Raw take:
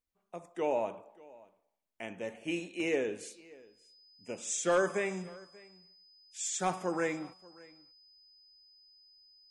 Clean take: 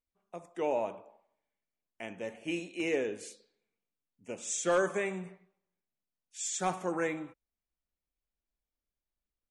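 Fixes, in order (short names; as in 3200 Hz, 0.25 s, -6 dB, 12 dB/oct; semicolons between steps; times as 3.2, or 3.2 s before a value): notch 5000 Hz, Q 30; inverse comb 0.585 s -23 dB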